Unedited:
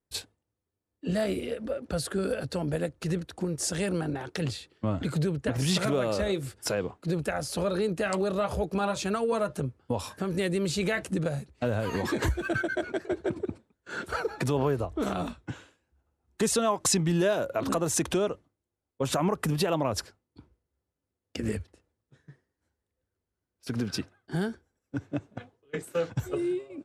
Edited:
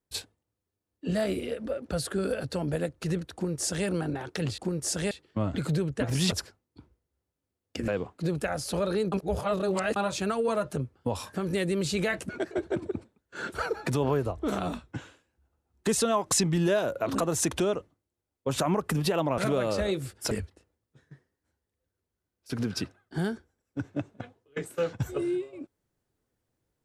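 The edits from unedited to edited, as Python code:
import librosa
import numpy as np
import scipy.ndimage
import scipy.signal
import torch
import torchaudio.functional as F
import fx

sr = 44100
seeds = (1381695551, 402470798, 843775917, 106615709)

y = fx.edit(x, sr, fx.duplicate(start_s=3.34, length_s=0.53, to_s=4.58),
    fx.swap(start_s=5.79, length_s=0.93, other_s=19.92, other_length_s=1.56),
    fx.reverse_span(start_s=7.96, length_s=0.84),
    fx.cut(start_s=11.13, length_s=1.7), tone=tone)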